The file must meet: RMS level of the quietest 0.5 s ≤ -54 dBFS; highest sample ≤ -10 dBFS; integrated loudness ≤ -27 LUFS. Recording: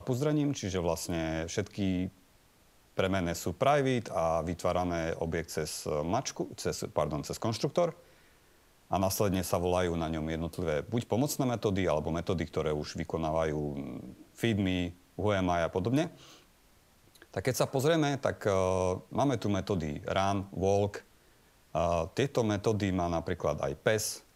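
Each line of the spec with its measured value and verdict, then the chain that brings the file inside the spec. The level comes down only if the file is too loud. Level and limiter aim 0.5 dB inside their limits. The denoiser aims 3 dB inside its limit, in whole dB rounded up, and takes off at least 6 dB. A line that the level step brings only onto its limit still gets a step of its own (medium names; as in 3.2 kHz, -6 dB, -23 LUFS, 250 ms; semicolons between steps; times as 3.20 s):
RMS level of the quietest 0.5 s -63 dBFS: pass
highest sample -12.0 dBFS: pass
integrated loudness -31.5 LUFS: pass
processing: none needed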